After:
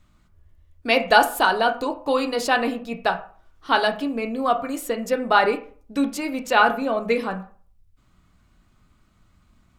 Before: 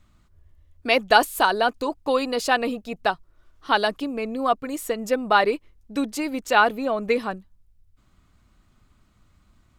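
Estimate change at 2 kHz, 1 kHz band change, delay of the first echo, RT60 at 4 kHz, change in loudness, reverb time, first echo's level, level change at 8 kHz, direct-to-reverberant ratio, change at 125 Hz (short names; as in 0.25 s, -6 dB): +1.5 dB, +1.0 dB, none, 0.30 s, +1.0 dB, 0.45 s, none, 0.0 dB, 5.5 dB, n/a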